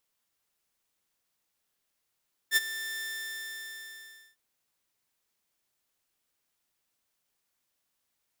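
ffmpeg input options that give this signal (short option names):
-f lavfi -i "aevalsrc='0.15*(2*mod(1780*t,1)-1)':d=1.85:s=44100,afade=t=in:d=0.055,afade=t=out:st=0.055:d=0.028:silence=0.178,afade=t=out:st=0.49:d=1.36"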